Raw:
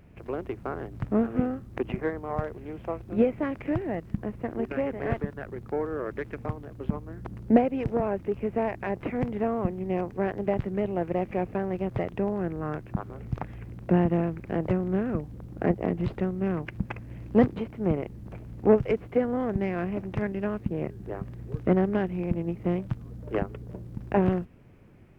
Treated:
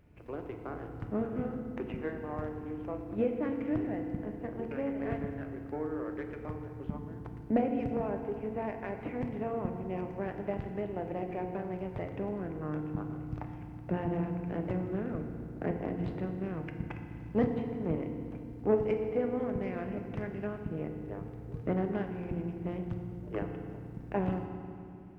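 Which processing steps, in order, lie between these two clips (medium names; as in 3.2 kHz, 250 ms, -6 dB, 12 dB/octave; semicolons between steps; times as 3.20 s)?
FDN reverb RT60 2.4 s, low-frequency decay 1.5×, high-frequency decay 0.8×, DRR 4 dB; trim -8.5 dB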